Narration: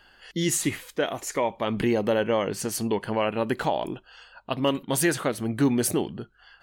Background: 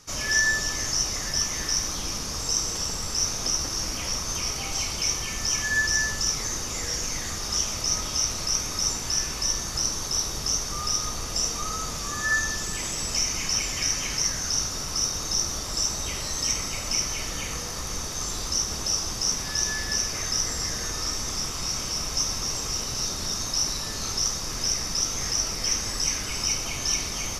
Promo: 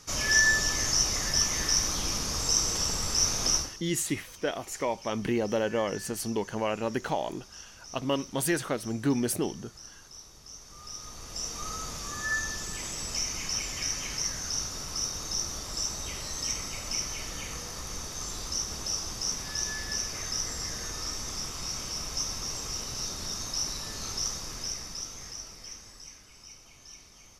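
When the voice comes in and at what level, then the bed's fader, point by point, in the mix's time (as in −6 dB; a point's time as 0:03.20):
3.45 s, −4.5 dB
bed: 0:03.57 0 dB
0:03.82 −21.5 dB
0:10.47 −21.5 dB
0:11.67 −6 dB
0:24.35 −6 dB
0:26.29 −23.5 dB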